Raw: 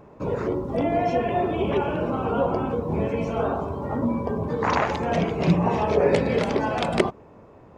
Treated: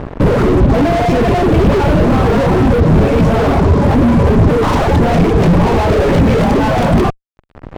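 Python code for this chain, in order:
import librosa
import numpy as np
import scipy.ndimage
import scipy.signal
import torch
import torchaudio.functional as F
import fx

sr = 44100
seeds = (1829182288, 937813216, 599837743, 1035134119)

y = fx.dereverb_blind(x, sr, rt60_s=0.83)
y = fx.fuzz(y, sr, gain_db=43.0, gate_db=-47.0)
y = fx.tilt_eq(y, sr, slope=-3.0)
y = y * librosa.db_to_amplitude(-1.0)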